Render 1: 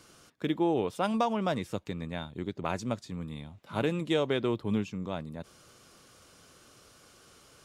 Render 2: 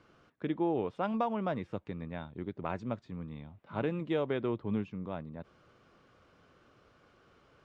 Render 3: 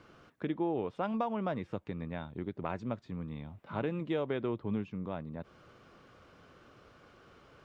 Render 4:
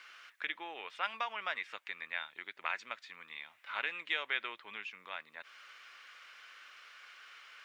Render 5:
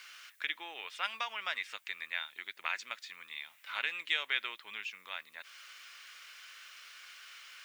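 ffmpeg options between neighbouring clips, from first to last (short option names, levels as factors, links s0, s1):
-af "lowpass=2200,volume=0.668"
-af "acompressor=threshold=0.00501:ratio=1.5,volume=1.78"
-af "highpass=f=2000:t=q:w=1.8,volume=2.66"
-af "crystalizer=i=5.5:c=0,volume=0.596"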